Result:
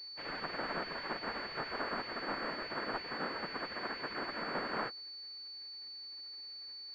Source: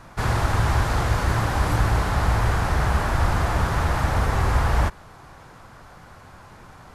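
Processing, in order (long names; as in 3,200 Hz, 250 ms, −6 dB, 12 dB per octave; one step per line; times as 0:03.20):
gate on every frequency bin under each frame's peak −20 dB weak
switching amplifier with a slow clock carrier 4,500 Hz
level −5.5 dB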